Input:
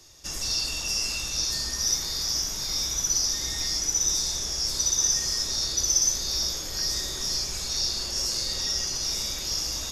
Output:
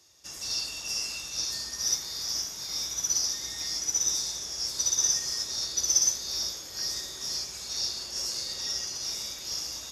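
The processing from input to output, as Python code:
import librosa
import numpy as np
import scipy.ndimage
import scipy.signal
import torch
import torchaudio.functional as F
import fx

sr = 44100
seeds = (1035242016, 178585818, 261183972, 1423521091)

y = scipy.signal.sosfilt(scipy.signal.butter(2, 68.0, 'highpass', fs=sr, output='sos'), x)
y = fx.low_shelf(y, sr, hz=310.0, db=-5.5)
y = fx.upward_expand(y, sr, threshold_db=-34.0, expansion=1.5)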